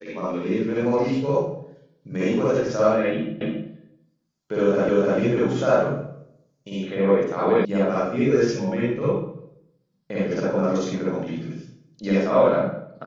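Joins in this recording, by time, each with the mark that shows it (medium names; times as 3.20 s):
3.41 s: repeat of the last 0.28 s
4.89 s: repeat of the last 0.3 s
7.65 s: sound stops dead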